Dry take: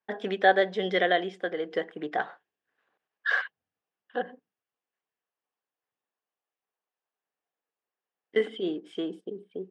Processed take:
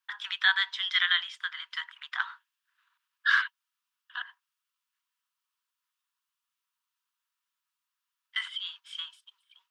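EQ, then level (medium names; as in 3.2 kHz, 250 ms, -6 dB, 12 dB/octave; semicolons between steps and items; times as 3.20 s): rippled Chebyshev high-pass 930 Hz, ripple 6 dB; treble shelf 4.5 kHz +6 dB; +7.0 dB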